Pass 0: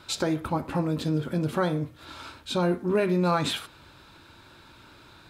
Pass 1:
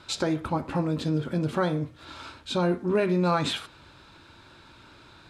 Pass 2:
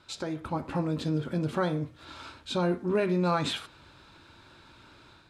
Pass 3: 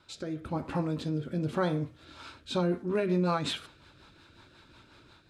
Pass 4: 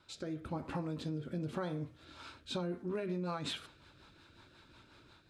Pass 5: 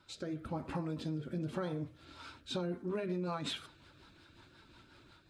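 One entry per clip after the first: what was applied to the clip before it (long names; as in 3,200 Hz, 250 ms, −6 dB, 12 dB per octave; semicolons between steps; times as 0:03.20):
low-pass filter 8,500 Hz 12 dB per octave
automatic gain control gain up to 6 dB; level −8.5 dB
rotating-speaker cabinet horn 1 Hz, later 5.5 Hz, at 0:01.84
downward compressor, threshold −30 dBFS, peak gain reduction 7.5 dB; level −4 dB
spectral magnitudes quantised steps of 15 dB; level +1 dB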